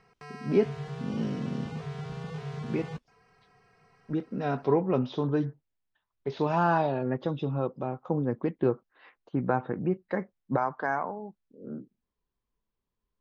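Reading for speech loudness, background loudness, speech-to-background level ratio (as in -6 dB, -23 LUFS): -30.0 LUFS, -39.0 LUFS, 9.0 dB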